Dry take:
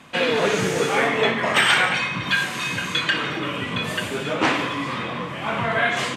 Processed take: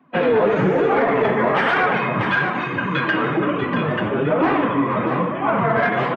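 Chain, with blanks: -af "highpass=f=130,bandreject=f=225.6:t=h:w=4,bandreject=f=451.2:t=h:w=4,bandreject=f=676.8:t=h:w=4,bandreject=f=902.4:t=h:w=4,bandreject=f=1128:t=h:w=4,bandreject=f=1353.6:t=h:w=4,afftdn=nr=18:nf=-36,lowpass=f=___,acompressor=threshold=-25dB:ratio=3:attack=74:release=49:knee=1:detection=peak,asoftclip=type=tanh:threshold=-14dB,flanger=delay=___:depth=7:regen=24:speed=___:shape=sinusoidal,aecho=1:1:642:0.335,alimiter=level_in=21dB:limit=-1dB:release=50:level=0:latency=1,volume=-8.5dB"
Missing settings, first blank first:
1200, 2.5, 1.1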